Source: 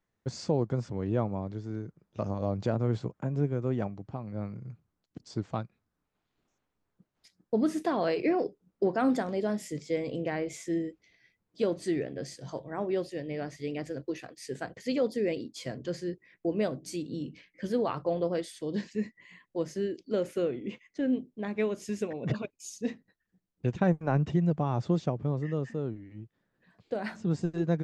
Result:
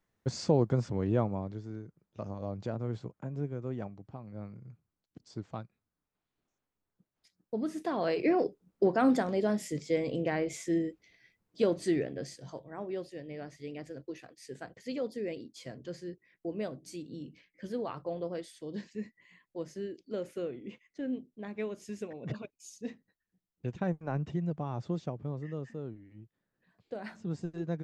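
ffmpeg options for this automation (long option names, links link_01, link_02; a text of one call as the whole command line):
ffmpeg -i in.wav -af "volume=10dB,afade=type=out:start_time=0.93:duration=0.92:silence=0.354813,afade=type=in:start_time=7.72:duration=0.7:silence=0.398107,afade=type=out:start_time=11.92:duration=0.7:silence=0.398107" out.wav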